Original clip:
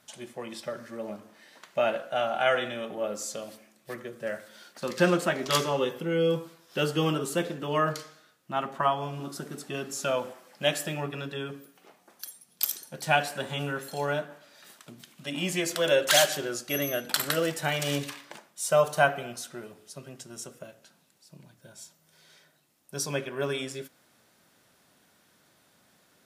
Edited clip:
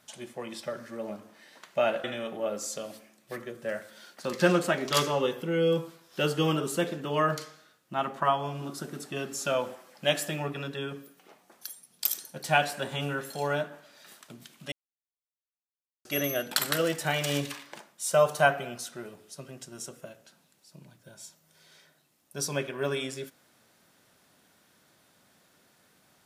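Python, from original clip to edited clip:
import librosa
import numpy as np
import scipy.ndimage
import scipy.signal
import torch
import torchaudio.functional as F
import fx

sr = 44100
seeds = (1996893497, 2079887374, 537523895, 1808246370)

y = fx.edit(x, sr, fx.cut(start_s=2.04, length_s=0.58),
    fx.silence(start_s=15.3, length_s=1.33), tone=tone)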